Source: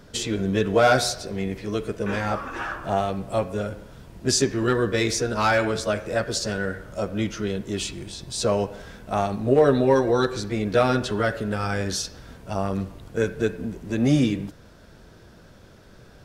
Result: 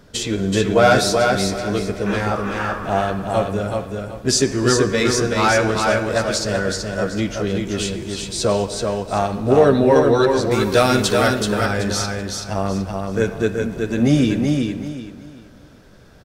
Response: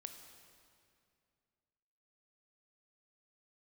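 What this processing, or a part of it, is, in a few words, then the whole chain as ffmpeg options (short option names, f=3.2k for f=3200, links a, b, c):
keyed gated reverb: -filter_complex "[0:a]asplit=3[a][b][c];[1:a]atrim=start_sample=2205[d];[b][d]afir=irnorm=-1:irlink=0[e];[c]apad=whole_len=716227[f];[e][f]sidechaingate=range=-33dB:threshold=-39dB:ratio=16:detection=peak,volume=0.5dB[g];[a][g]amix=inputs=2:normalize=0,asettb=1/sr,asplit=3[h][i][j];[h]atrim=end=10.514[k];[i]atrim=start=10.51:end=11.28,asetpts=PTS-STARTPTS,afade=t=in:d=0.004:c=qsin,afade=t=out:st=0.766:d=0.004:c=qsin,aemphasis=mode=production:type=75kf[l];[j]atrim=start=11.276[m];[k][l]acrossfade=d=0.004:c1=hsin:c2=qsin[n];[n][m]acrossfade=d=0.004:c1=qsin:c2=hsin,aecho=1:1:379|758|1137|1516:0.631|0.177|0.0495|0.0139"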